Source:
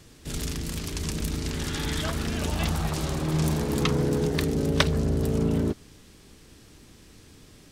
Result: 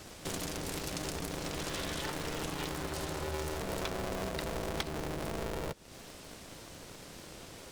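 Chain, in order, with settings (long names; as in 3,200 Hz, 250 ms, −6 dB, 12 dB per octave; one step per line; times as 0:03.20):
downward compressor 6 to 1, threshold −37 dBFS, peak gain reduction 20 dB
low-shelf EQ 170 Hz −5 dB
ring modulator with a square carrier 230 Hz
level +4 dB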